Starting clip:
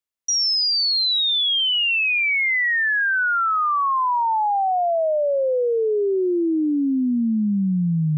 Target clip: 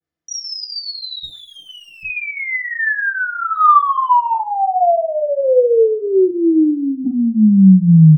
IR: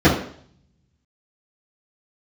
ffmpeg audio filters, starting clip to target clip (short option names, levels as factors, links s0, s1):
-filter_complex "[0:a]asplit=3[s0][s1][s2];[s0]afade=t=out:st=6.27:d=0.02[s3];[s1]highpass=700,afade=t=in:st=6.27:d=0.02,afade=t=out:st=7.04:d=0.02[s4];[s2]afade=t=in:st=7.04:d=0.02[s5];[s3][s4][s5]amix=inputs=3:normalize=0,acompressor=threshold=0.0501:ratio=6,asettb=1/sr,asplit=3[s6][s7][s8];[s6]atrim=end=1.234[s9];[s7]atrim=start=1.23:end=2.03,asetpts=PTS-STARTPTS,afade=t=in:d=0.004:c=qsin,afade=t=out:st=0.796:d=0.004:c=qsin,aeval=exprs='(tanh(89.1*val(0)+0.7)-tanh(0.7))/89.1':c=same[s10];[s8]atrim=start=2.026[s11];[s9][s10]acrossfade=d=0.004:c1=hsin:c2=qsin[s12];[s12][s11]acrossfade=d=0.004:c1=qsin:c2=hsin,asettb=1/sr,asplit=3[s13][s14][s15];[s13]atrim=end=3.544[s16];[s14]atrim=start=3.54:end=4.34,asetpts=PTS-STARTPTS,afade=t=in:d=0.004:c=qsin,afade=t=out:st=0.796:d=0.004:c=qsin,aeval=exprs='0.282*sin(PI/2*1.78*val(0)/0.282)':c=same[s17];[s15]atrim=start=4.336[s18];[s16][s17]acrossfade=d=0.004:c1=hsin:c2=qsin[s19];[s19][s18]acrossfade=d=0.004:c1=qsin:c2=hsin,aecho=1:1:69|138|207|276|345:0.126|0.0705|0.0395|0.0221|0.0124[s20];[1:a]atrim=start_sample=2205,atrim=end_sample=3087[s21];[s20][s21]afir=irnorm=-1:irlink=0,adynamicequalizer=threshold=0.2:dfrequency=2000:dqfactor=0.7:tfrequency=2000:tqfactor=0.7:attack=5:release=100:ratio=0.375:range=1.5:mode=cutabove:tftype=highshelf,volume=0.168"